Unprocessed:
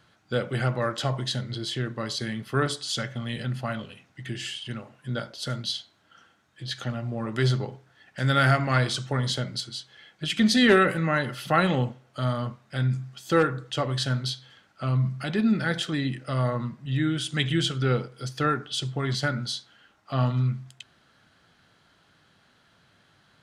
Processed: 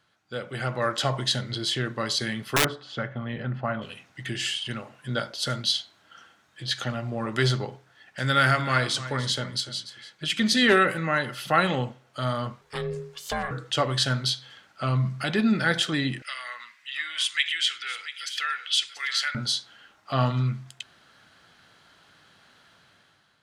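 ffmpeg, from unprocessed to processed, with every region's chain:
-filter_complex "[0:a]asettb=1/sr,asplit=3[a][b][c];[a]atrim=end=2.564[d];[b]atrim=start=2.56:end=3.82,asetpts=PTS-STARTPTS,afade=t=in:d=0.004:c=qsin,afade=t=out:st=1.256:d=0.004:c=qsin,lowpass=1.5k,aeval=exprs='(mod(7.5*val(0)+1,2)-1)/7.5':c=same[e];[c]atrim=start=3.816[f];[d][e]acrossfade=d=0.004:c1=hsin:c2=qsin[g];[g][f]acrossfade=d=0.004:c1=qsin:c2=hsin,asettb=1/sr,asplit=3[h][i][j];[h]atrim=end=8.244[k];[i]atrim=start=8.24:end=10.62,asetpts=PTS-STARTPTS,afade=t=in:d=0.004:c=qsin,afade=t=out:st=2.376:d=0.004:c=qsin,bandreject=f=730:w=6.3,aecho=1:1:292:0.188,atrim=end_sample=104958[l];[j]atrim=start=10.616[m];[k][l]acrossfade=d=0.004:c1=hsin:c2=qsin[n];[n][m]acrossfade=d=0.004:c1=qsin:c2=hsin,asettb=1/sr,asplit=3[o][p][q];[o]atrim=end=12.614[r];[p]atrim=start=12.61:end=13.51,asetpts=PTS-STARTPTS,afade=t=in:d=0.004:c=qsin,afade=t=out:st=0.896:d=0.004:c=qsin,highshelf=f=6.5k:g=4,aeval=exprs='val(0)*sin(2*PI*280*n/s)':c=same,acompressor=threshold=-28dB:ratio=4:attack=3.2:release=140:knee=1:detection=peak[s];[q]atrim=start=13.506[t];[r][s]acrossfade=d=0.004:c1=hsin:c2=qsin[u];[u][t]acrossfade=d=0.004:c1=qsin:c2=hsin,asettb=1/sr,asplit=3[v][w][x];[v]atrim=end=16.224[y];[w]atrim=start=16.22:end=19.35,asetpts=PTS-STARTPTS,afade=t=in:d=0.004:c=qsin,afade=t=out:st=3.126:d=0.004:c=qsin,acompressor=threshold=-27dB:ratio=2:attack=3.2:release=140:knee=1:detection=peak,highpass=f=2.1k:t=q:w=2.5,aecho=1:1:686:0.224,atrim=end_sample=138033[z];[x]atrim=start=19.346[aa];[y][z]acrossfade=d=0.004:c1=hsin:c2=qsin[ab];[ab][aa]acrossfade=d=0.004:c1=qsin:c2=hsin,lowshelf=f=420:g=-7,dynaudnorm=f=290:g=5:m=11.5dB,volume=-5.5dB"

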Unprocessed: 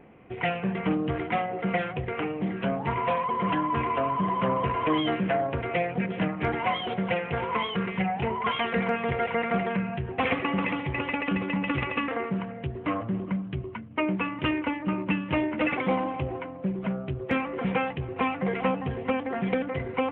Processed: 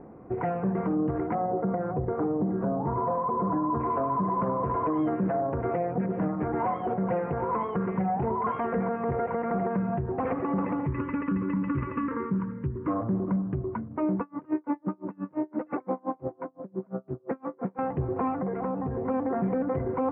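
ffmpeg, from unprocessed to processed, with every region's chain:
-filter_complex "[0:a]asettb=1/sr,asplit=3[a][b][c];[a]atrim=end=1.354[d];[b]atrim=start=1.35:end=3.8,asetpts=PTS-STARTPTS,afade=t=in:d=0.004:c=qsin,afade=t=out:st=2.446:d=0.004:c=qsin,lowpass=1.4k,aemphasis=mode=reproduction:type=75fm[e];[c]atrim=start=3.796[f];[d][e]acrossfade=d=0.004:c1=hsin:c2=qsin[g];[g][f]acrossfade=d=0.004:c1=qsin:c2=hsin,asettb=1/sr,asplit=3[h][i][j];[h]atrim=end=10.864[k];[i]atrim=start=10.86:end=12.88,asetpts=PTS-STARTPTS,afade=t=in:d=0.004:c=qsin,afade=t=out:st=2.016:d=0.004:c=qsin,asuperstop=centerf=750:order=12:qfactor=3.1,equalizer=f=570:w=1.5:g=-13[l];[j]atrim=start=12.876[m];[k][l]acrossfade=d=0.004:c1=hsin:c2=qsin[n];[n][m]acrossfade=d=0.004:c1=qsin:c2=hsin,asettb=1/sr,asplit=3[o][p][q];[o]atrim=end=14.204[r];[p]atrim=start=14.2:end=17.79,asetpts=PTS-STARTPTS,afade=t=in:d=0.004:c=qsin,afade=t=out:st=3.586:d=0.004:c=qsin,highpass=190,lowpass=2.4k,aeval=exprs='val(0)*pow(10,-36*(0.5-0.5*cos(2*PI*5.8*n/s))/20)':c=same[s];[q]atrim=start=17.786[t];[r][s]acrossfade=d=0.004:c1=hsin:c2=qsin[u];[u][t]acrossfade=d=0.004:c1=qsin:c2=hsin,asettb=1/sr,asplit=3[v][w][x];[v]atrim=end=18.364[y];[w]atrim=start=18.36:end=19.08,asetpts=PTS-STARTPTS,afade=t=in:d=0.004:c=qsin,afade=t=out:st=0.716:d=0.004:c=qsin,lowpass=2.8k,acompressor=threshold=-32dB:ratio=6:attack=3.2:release=140:knee=1:detection=peak[z];[x]atrim=start=19.076[aa];[y][z]acrossfade=d=0.004:c1=hsin:c2=qsin[ab];[ab][aa]acrossfade=d=0.004:c1=qsin:c2=hsin,lowpass=f=1.3k:w=0.5412,lowpass=f=1.3k:w=1.3066,equalizer=f=320:t=o:w=0.77:g=3,alimiter=limit=-24dB:level=0:latency=1:release=150,volume=4.5dB"

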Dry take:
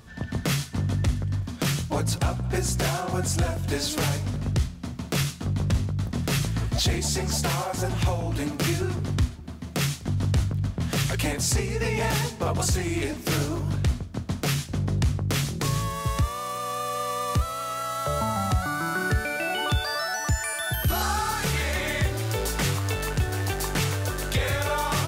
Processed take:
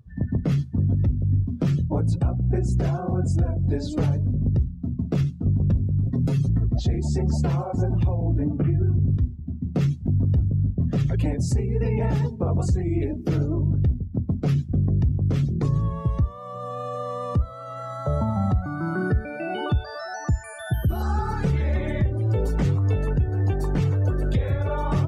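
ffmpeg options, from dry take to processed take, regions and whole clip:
-filter_complex "[0:a]asettb=1/sr,asplit=3[a][b][c];[a]atrim=end=6.034[d];[b]atrim=start=6.03:end=6.49,asetpts=PTS-STARTPTS,afade=t=in:d=0.004:c=qsin,afade=t=out:st=0.456:d=0.004:c=qsin,highshelf=f=3.9k:g=5.5,aecho=1:1:7.5:0.86,atrim=end_sample=20286,acompressor=threshold=-23dB:ratio=16:attack=3.2:release=140:knee=1:detection=peak[e];[c]atrim=start=6.486[f];[d][e]acrossfade=d=0.004:c1=hsin:c2=qsin[g];[g][f]acrossfade=d=0.004:c1=qsin:c2=hsin,asettb=1/sr,asplit=3[h][i][j];[h]atrim=end=8.324[k];[i]atrim=start=8.32:end=9.17,asetpts=PTS-STARTPTS,afade=t=in:d=0.004:c=qsin,afade=t=out:st=0.846:d=0.004:c=qsin,acrossover=split=2800[l][m];[m]acompressor=threshold=-45dB:ratio=4:attack=1:release=60[n];[l][n]amix=inputs=2:normalize=0,lowpass=9.4k,asubboost=boost=9.5:cutoff=240[o];[j]atrim=start=9.166[p];[k][o]acrossfade=d=0.004:c1=hsin:c2=qsin[q];[q][p]acrossfade=d=0.004:c1=qsin:c2=hsin,afftdn=nr=22:nf=-33,tiltshelf=f=740:g=9.5,alimiter=limit=-14dB:level=0:latency=1:release=390"

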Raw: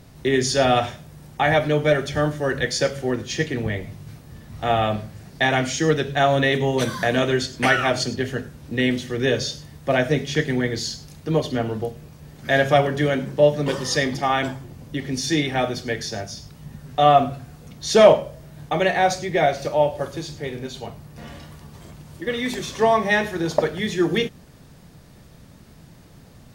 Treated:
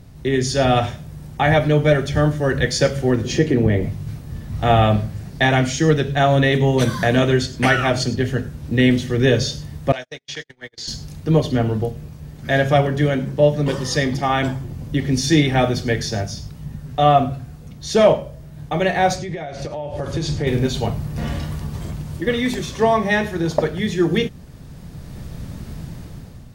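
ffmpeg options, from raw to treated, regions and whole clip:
-filter_complex "[0:a]asettb=1/sr,asplit=3[a][b][c];[a]atrim=end=3.244[d];[b]atrim=start=3.24:end=3.89,asetpts=PTS-STARTPTS,afade=t=in:d=0.004:c=qsin,afade=t=out:st=0.646:d=0.004:c=qsin,equalizer=f=360:t=o:w=2:g=9.5,acompressor=threshold=-25dB:ratio=1.5:attack=3.2:release=140:knee=1:detection=peak,bandreject=f=3.6k:w=22[e];[c]atrim=start=3.886[f];[d][e]acrossfade=d=0.004:c1=hsin:c2=qsin[g];[g][f]acrossfade=d=0.004:c1=qsin:c2=hsin,asettb=1/sr,asplit=3[h][i][j];[h]atrim=end=9.924[k];[i]atrim=start=9.92:end=10.88,asetpts=PTS-STARTPTS,afade=t=in:d=0.004:c=qsin,afade=t=out:st=0.956:d=0.004:c=qsin,acrossover=split=590 7100:gain=0.0794 1 0.141[l][m][n];[l][m][n]amix=inputs=3:normalize=0,acrossover=split=440|3800[o][p][q];[o]acompressor=threshold=-41dB:ratio=4[r];[p]acompressor=threshold=-38dB:ratio=4[s];[q]acompressor=threshold=-34dB:ratio=4[t];[r][s][t]amix=inputs=3:normalize=0,agate=range=-42dB:threshold=-37dB:ratio=16:release=100:detection=peak[u];[j]atrim=start=10.876[v];[k][u]acrossfade=d=0.004:c1=hsin:c2=qsin[w];[w][v]acrossfade=d=0.004:c1=qsin:c2=hsin,asettb=1/sr,asplit=3[x][y][z];[x]atrim=end=19.164[aa];[y]atrim=start=19.16:end=20.47,asetpts=PTS-STARTPTS,afade=t=in:d=0.004:c=qsin,afade=t=out:st=1.306:d=0.004:c=qsin,lowpass=8.8k,acompressor=threshold=-29dB:ratio=10:attack=3.2:release=140:knee=1:detection=peak[ab];[z]atrim=start=20.466[ac];[aa][ab]acrossfade=d=0.004:c1=hsin:c2=qsin[ad];[ad][ac]acrossfade=d=0.004:c1=qsin:c2=hsin,lowshelf=f=190:g=10.5,dynaudnorm=f=280:g=5:m=11.5dB,volume=-2.5dB"

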